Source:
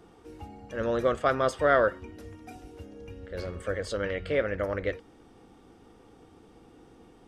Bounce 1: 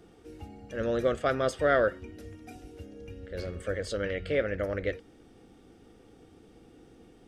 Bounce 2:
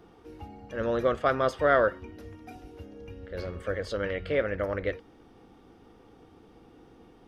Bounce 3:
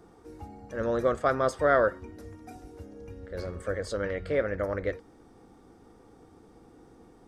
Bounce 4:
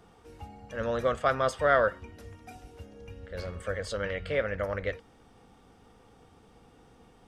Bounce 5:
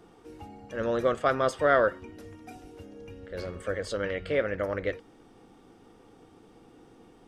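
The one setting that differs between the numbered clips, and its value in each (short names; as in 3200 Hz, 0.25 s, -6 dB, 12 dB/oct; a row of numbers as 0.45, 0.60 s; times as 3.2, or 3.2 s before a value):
bell, frequency: 1000, 8100, 2900, 330, 63 Hz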